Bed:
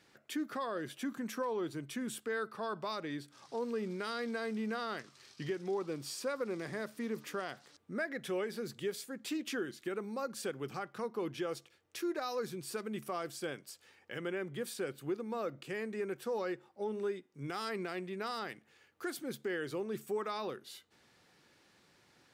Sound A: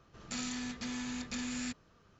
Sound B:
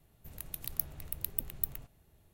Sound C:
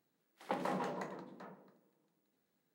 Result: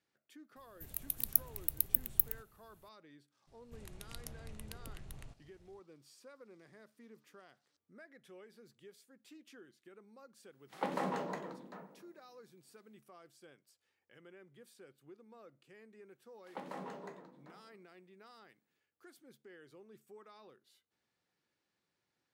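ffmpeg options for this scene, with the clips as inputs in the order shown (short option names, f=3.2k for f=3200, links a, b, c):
-filter_complex "[2:a]asplit=2[a][b];[3:a]asplit=2[c][d];[0:a]volume=-19.5dB[e];[a]highshelf=f=6k:g=9.5[f];[b]lowpass=f=8.9k:w=0.5412,lowpass=f=8.9k:w=1.3066[g];[c]dynaudnorm=f=120:g=3:m=14dB[h];[f]atrim=end=2.33,asetpts=PTS-STARTPTS,volume=-4.5dB,afade=t=in:d=0.004:c=hsin,afade=t=out:st=2.326:d=0.004:c=hsin,adelay=560[i];[g]atrim=end=2.33,asetpts=PTS-STARTPTS,volume=-2.5dB,afade=t=in:d=0.004:c=hsin,afade=t=out:st=2.326:d=0.004:c=hsin,adelay=3470[j];[h]atrim=end=2.74,asetpts=PTS-STARTPTS,volume=-12.5dB,afade=t=in:d=0.004:c=hsin,afade=t=out:st=2.736:d=0.004:c=hsin,adelay=10320[k];[d]atrim=end=2.74,asetpts=PTS-STARTPTS,volume=-7.5dB,afade=t=in:d=0.004:c=hsin,afade=t=out:st=2.736:d=0.004:c=hsin,adelay=16060[l];[e][i][j][k][l]amix=inputs=5:normalize=0"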